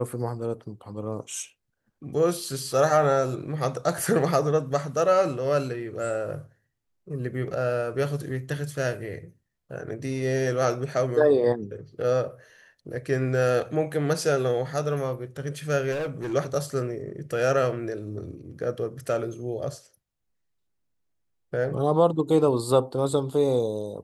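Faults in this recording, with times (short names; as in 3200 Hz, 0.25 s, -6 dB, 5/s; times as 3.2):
15.91–16.34 clipped -26.5 dBFS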